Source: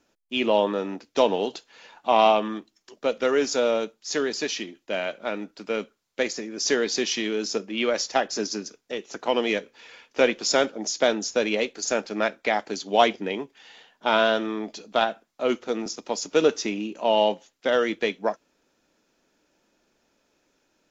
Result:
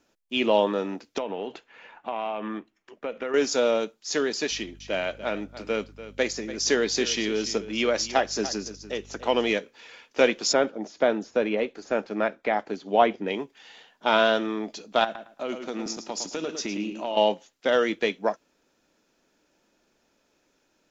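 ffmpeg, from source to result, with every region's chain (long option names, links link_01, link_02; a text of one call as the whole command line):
ffmpeg -i in.wav -filter_complex "[0:a]asettb=1/sr,asplit=3[link_01][link_02][link_03];[link_01]atrim=end=1.184[link_04];[link_02]atrim=start=1.18:end=3.34,asetpts=PTS-STARTPTS,afade=type=in:duration=0.004:curve=qsin,afade=type=out:start_time=2.156:duration=0.004:curve=qsin,highshelf=frequency=3300:width_type=q:width=1.5:gain=-11.5,acompressor=threshold=-28dB:ratio=4:attack=3.2:release=140:knee=1:detection=peak[link_05];[link_03]atrim=start=3.336[link_06];[link_04][link_05]acrossfade=duration=0.004:curve1=hsin:curve2=qsin[link_07];[link_07][link_06]acrossfade=duration=0.004:curve1=qsin:curve2=hsin,asettb=1/sr,asplit=3[link_08][link_09][link_10];[link_08]atrim=end=4.514[link_11];[link_09]atrim=start=4.51:end=9.54,asetpts=PTS-STARTPTS,afade=type=in:duration=0.004:curve=qsin,afade=type=out:start_time=5.026:duration=0.004:curve=qsin,aeval=exprs='val(0)+0.00398*(sin(2*PI*50*n/s)+sin(2*PI*2*50*n/s)/2+sin(2*PI*3*50*n/s)/3+sin(2*PI*4*50*n/s)/4+sin(2*PI*5*50*n/s)/5)':channel_layout=same,aecho=1:1:291:0.2,atrim=end_sample=221823[link_12];[link_10]atrim=start=9.536[link_13];[link_11][link_12]acrossfade=duration=0.004:curve1=hsin:curve2=qsin[link_14];[link_14][link_13]acrossfade=duration=0.004:curve1=qsin:curve2=hsin,asettb=1/sr,asplit=3[link_15][link_16][link_17];[link_15]atrim=end=10.534[link_18];[link_16]atrim=start=10.53:end=13.28,asetpts=PTS-STARTPTS,afade=type=in:duration=0.004:curve=qsin,afade=type=out:start_time=2.746:duration=0.004:curve=qsin,acrossover=split=3200[link_19][link_20];[link_20]acompressor=threshold=-44dB:ratio=4:attack=1:release=60[link_21];[link_19][link_21]amix=inputs=2:normalize=0,highshelf=frequency=3000:gain=-10.5[link_22];[link_17]atrim=start=13.276[link_23];[link_18][link_22]acrossfade=duration=0.004:curve1=hsin:curve2=qsin[link_24];[link_24][link_23]acrossfade=duration=0.004:curve1=qsin:curve2=hsin,asettb=1/sr,asplit=3[link_25][link_26][link_27];[link_25]atrim=end=15.044[link_28];[link_26]atrim=start=15.04:end=17.17,asetpts=PTS-STARTPTS,afade=type=in:duration=0.004:curve=qsin,afade=type=out:start_time=2.126:duration=0.004:curve=qsin,acompressor=threshold=-26dB:ratio=4:attack=3.2:release=140:knee=1:detection=peak,equalizer=frequency=460:width_type=o:width=0.31:gain=-4.5,asplit=2[link_29][link_30];[link_30]adelay=109,lowpass=frequency=4600:poles=1,volume=-7dB,asplit=2[link_31][link_32];[link_32]adelay=109,lowpass=frequency=4600:poles=1,volume=0.22,asplit=2[link_33][link_34];[link_34]adelay=109,lowpass=frequency=4600:poles=1,volume=0.22[link_35];[link_29][link_31][link_33][link_35]amix=inputs=4:normalize=0,atrim=end_sample=93933[link_36];[link_27]atrim=start=17.166[link_37];[link_28][link_36]acrossfade=duration=0.004:curve1=hsin:curve2=qsin[link_38];[link_38][link_37]acrossfade=duration=0.004:curve1=qsin:curve2=hsin" out.wav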